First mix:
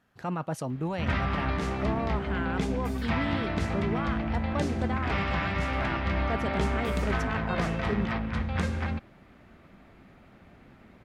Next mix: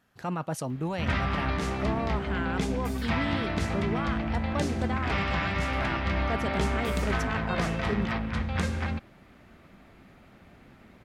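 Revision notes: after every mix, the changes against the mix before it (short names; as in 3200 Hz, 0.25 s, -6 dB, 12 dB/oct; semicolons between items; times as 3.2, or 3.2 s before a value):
master: add high shelf 3900 Hz +6 dB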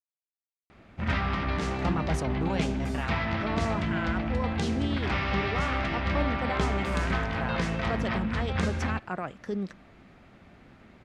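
speech: entry +1.60 s; master: add LPF 7700 Hz 12 dB/oct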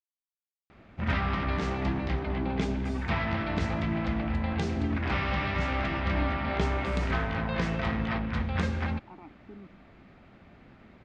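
speech: add vowel filter u; master: add air absorption 79 m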